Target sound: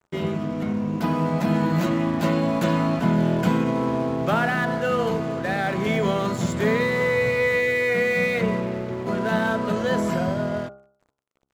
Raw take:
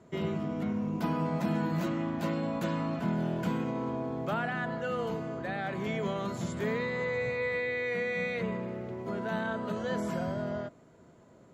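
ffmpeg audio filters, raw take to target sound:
-af "aeval=exprs='sgn(val(0))*max(abs(val(0))-0.00316,0)':c=same,bandreject=f=67.33:t=h:w=4,bandreject=f=134.66:t=h:w=4,bandreject=f=201.99:t=h:w=4,bandreject=f=269.32:t=h:w=4,bandreject=f=336.65:t=h:w=4,bandreject=f=403.98:t=h:w=4,bandreject=f=471.31:t=h:w=4,bandreject=f=538.64:t=h:w=4,bandreject=f=605.97:t=h:w=4,bandreject=f=673.3:t=h:w=4,bandreject=f=740.63:t=h:w=4,bandreject=f=807.96:t=h:w=4,bandreject=f=875.29:t=h:w=4,bandreject=f=942.62:t=h:w=4,bandreject=f=1.00995k:t=h:w=4,bandreject=f=1.07728k:t=h:w=4,bandreject=f=1.14461k:t=h:w=4,bandreject=f=1.21194k:t=h:w=4,bandreject=f=1.27927k:t=h:w=4,bandreject=f=1.3466k:t=h:w=4,bandreject=f=1.41393k:t=h:w=4,bandreject=f=1.48126k:t=h:w=4,dynaudnorm=f=360:g=9:m=4dB,volume=7.5dB"

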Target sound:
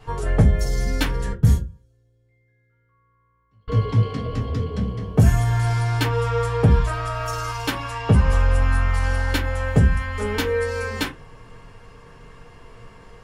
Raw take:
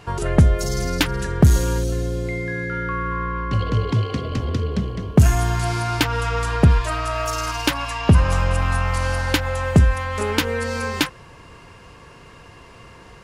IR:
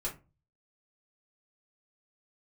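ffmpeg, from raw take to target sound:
-filter_complex "[0:a]asettb=1/sr,asplit=3[a][b][c];[a]atrim=end=1.324[d];[b]atrim=start=1.32:end=3.68,asetpts=PTS-STARTPTS,afade=t=in:d=0.004:c=qsin,afade=t=out:st=2.356:d=0.004:c=qsin,agate=range=-37dB:threshold=-12dB:ratio=16:detection=peak[e];[c]atrim=start=3.676[f];[d][e]acrossfade=d=0.004:c1=hsin:c2=qsin[g];[g][f]acrossfade=d=0.004:c1=qsin:c2=hsin[h];[1:a]atrim=start_sample=2205,asetrate=57330,aresample=44100[i];[h][i]afir=irnorm=-1:irlink=0,volume=-3.5dB"

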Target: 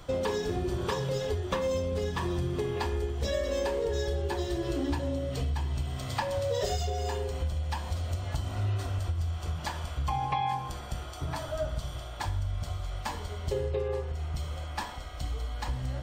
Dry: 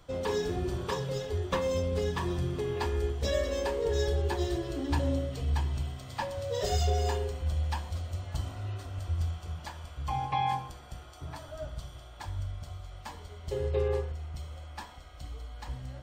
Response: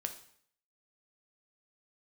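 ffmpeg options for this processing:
-filter_complex "[0:a]acompressor=threshold=-36dB:ratio=6,asplit=2[a][b];[1:a]atrim=start_sample=2205[c];[b][c]afir=irnorm=-1:irlink=0,volume=-3dB[d];[a][d]amix=inputs=2:normalize=0,volume=4.5dB"

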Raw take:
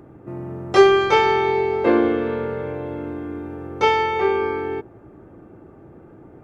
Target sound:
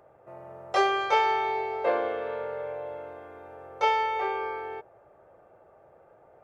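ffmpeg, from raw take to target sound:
-af "lowshelf=f=410:t=q:w=3:g=-12,volume=-8dB"

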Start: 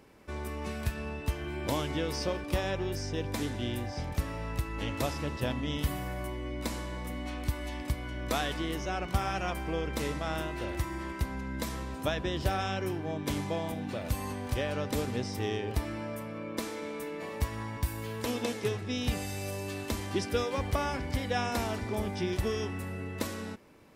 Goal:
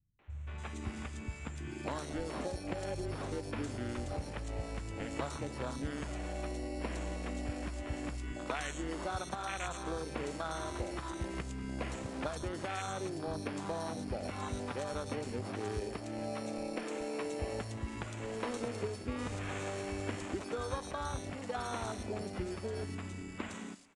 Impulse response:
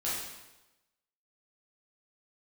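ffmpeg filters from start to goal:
-filter_complex "[0:a]dynaudnorm=f=210:g=31:m=7dB,afwtdn=0.0447,tiltshelf=f=1.1k:g=-7.5,acompressor=threshold=-41dB:ratio=12,aemphasis=mode=production:type=cd,acrusher=samples=9:mix=1:aa=0.000001,acrossover=split=150|3800[a][b][c];[b]adelay=190[d];[c]adelay=300[e];[a][d][e]amix=inputs=3:normalize=0,asplit=2[f][g];[1:a]atrim=start_sample=2205[h];[g][h]afir=irnorm=-1:irlink=0,volume=-22.5dB[i];[f][i]amix=inputs=2:normalize=0,aresample=22050,aresample=44100,volume=6.5dB"

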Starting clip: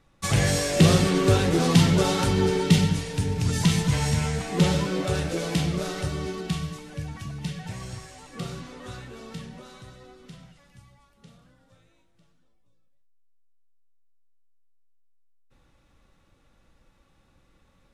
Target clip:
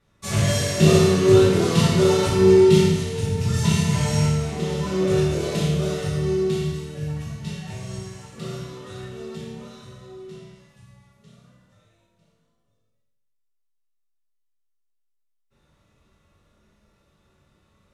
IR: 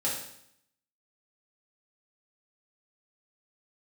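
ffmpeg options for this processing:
-filter_complex "[0:a]asettb=1/sr,asplit=3[a][b][c];[a]atrim=end=4.254[d];[b]atrim=start=4.25:end=4.84,asetpts=PTS-STARTPTS,afade=t=in:d=0.004:c=qsin,afade=t=out:st=0.586:d=0.004:c=qsin,acompressor=threshold=-30dB:ratio=2[e];[c]atrim=start=4.836[f];[d][e]acrossfade=d=0.004:c1=hsin:c2=qsin[g];[g][f]acrossfade=d=0.004:c1=qsin:c2=hsin[h];[1:a]atrim=start_sample=2205,asetrate=33075,aresample=44100[i];[h][i]afir=irnorm=-1:irlink=0,volume=-8dB"

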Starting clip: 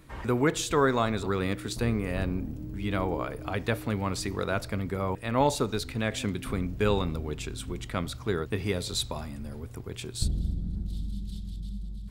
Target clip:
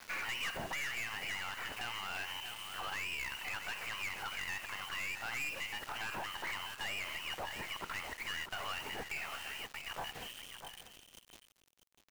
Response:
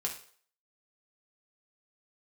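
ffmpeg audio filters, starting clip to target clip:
-filter_complex "[0:a]highpass=860,equalizer=f=2.2k:w=0.42:g=2,lowpass=f=2.8k:t=q:w=0.5098,lowpass=f=2.8k:t=q:w=0.6013,lowpass=f=2.8k:t=q:w=0.9,lowpass=f=2.8k:t=q:w=2.563,afreqshift=-3300,acompressor=threshold=-41dB:ratio=2,aeval=exprs='(tanh(158*val(0)+0.45)-tanh(0.45))/158':c=same,acrusher=bits=9:mix=0:aa=0.000001,asplit=2[a][b];[b]aecho=0:1:645:0.251[c];[a][c]amix=inputs=2:normalize=0,alimiter=level_in=20dB:limit=-24dB:level=0:latency=1:release=68,volume=-20dB,volume=12dB"

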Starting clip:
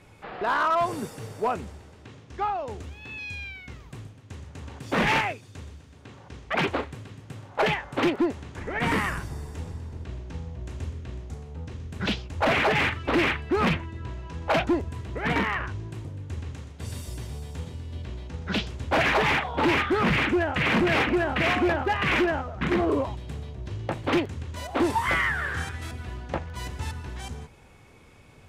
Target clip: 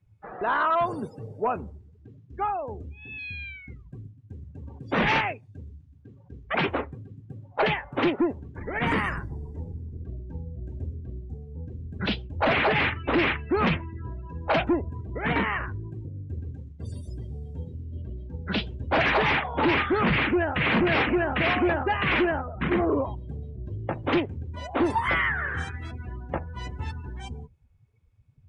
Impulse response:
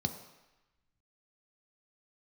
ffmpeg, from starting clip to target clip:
-af "afftdn=nr=28:nf=-39"

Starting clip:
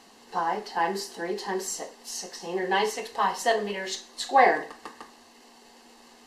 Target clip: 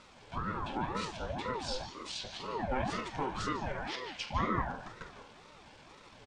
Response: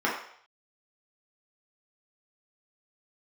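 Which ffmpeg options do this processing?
-filter_complex "[0:a]acompressor=threshold=-35dB:ratio=2,asetrate=29433,aresample=44100,atempo=1.49831,asplit=2[a][b];[1:a]atrim=start_sample=2205,asetrate=48510,aresample=44100,adelay=148[c];[b][c]afir=irnorm=-1:irlink=0,volume=-15dB[d];[a][d]amix=inputs=2:normalize=0,aeval=exprs='val(0)*sin(2*PI*510*n/s+510*0.5/2*sin(2*PI*2*n/s))':c=same"

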